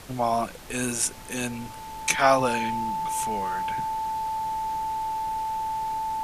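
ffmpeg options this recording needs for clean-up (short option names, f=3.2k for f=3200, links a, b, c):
-af "bandreject=f=880:w=30,afftdn=nr=30:nf=-39"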